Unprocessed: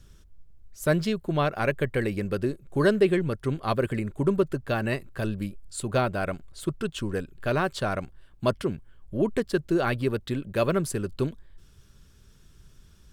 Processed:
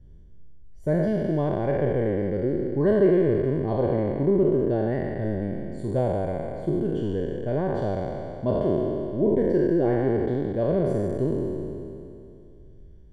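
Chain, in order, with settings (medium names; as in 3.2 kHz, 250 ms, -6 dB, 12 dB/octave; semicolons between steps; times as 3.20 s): spectral sustain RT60 2.64 s; boxcar filter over 34 samples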